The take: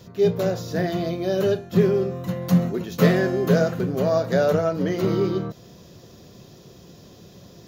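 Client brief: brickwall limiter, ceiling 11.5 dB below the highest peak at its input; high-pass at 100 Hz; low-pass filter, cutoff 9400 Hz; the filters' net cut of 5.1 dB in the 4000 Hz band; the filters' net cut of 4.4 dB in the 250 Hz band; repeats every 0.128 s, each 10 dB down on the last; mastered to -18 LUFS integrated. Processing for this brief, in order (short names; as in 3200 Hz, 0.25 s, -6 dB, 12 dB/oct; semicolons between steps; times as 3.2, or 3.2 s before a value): HPF 100 Hz; LPF 9400 Hz; bell 250 Hz -7.5 dB; bell 4000 Hz -6.5 dB; limiter -18.5 dBFS; feedback echo 0.128 s, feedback 32%, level -10 dB; gain +9.5 dB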